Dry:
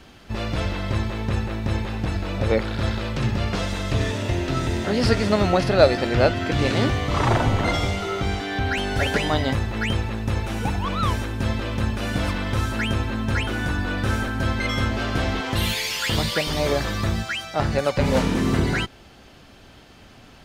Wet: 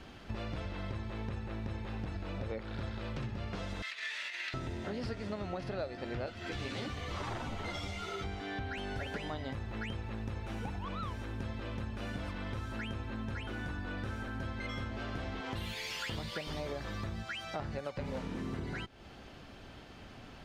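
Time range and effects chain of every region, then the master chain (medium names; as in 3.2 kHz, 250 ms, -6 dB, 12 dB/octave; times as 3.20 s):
3.82–4.54 s: peaking EQ 4.3 kHz +6 dB 0.3 oct + compressor with a negative ratio -25 dBFS + resonant high-pass 2 kHz, resonance Q 2.7
6.26–8.24 s: treble shelf 2.5 kHz +10 dB + three-phase chorus
whole clip: treble shelf 5.9 kHz -10 dB; compression 6:1, threshold -34 dBFS; trim -3 dB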